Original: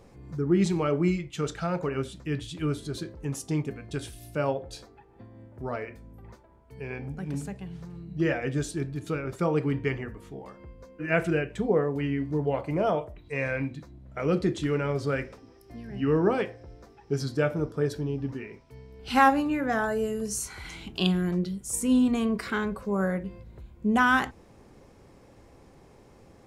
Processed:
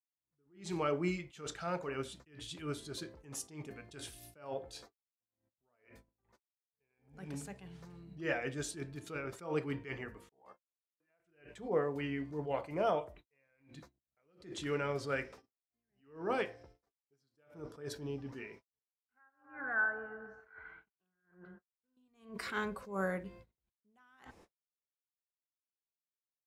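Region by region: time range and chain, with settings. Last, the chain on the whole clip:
0:10.29–0:11.20: downward expander −38 dBFS + downward compressor 12 to 1, threshold −34 dBFS + parametric band 800 Hz +10.5 dB 1.5 octaves
0:18.79–0:21.97: transistor ladder low-pass 1,600 Hz, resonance 85% + delay with a band-pass on its return 136 ms, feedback 62%, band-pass 630 Hz, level −10 dB
whole clip: low-shelf EQ 320 Hz −10.5 dB; noise gate −51 dBFS, range −57 dB; level that may rise only so fast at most 140 dB per second; level −3.5 dB

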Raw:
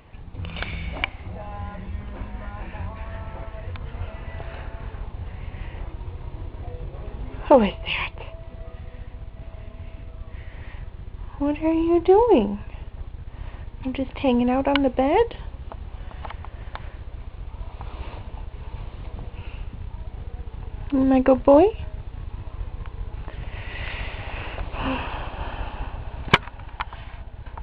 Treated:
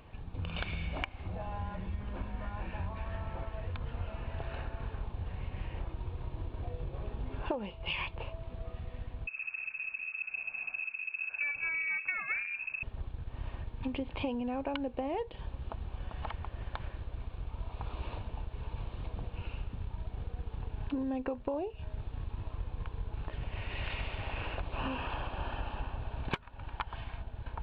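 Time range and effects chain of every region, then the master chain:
0:09.27–0:12.83: lower of the sound and its delayed copy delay 0.67 ms + parametric band 2,000 Hz −4 dB 1.5 octaves + voice inversion scrambler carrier 2,600 Hz
whole clip: notch filter 2,000 Hz, Q 9.7; downward compressor 20 to 1, threshold −27 dBFS; level −4 dB

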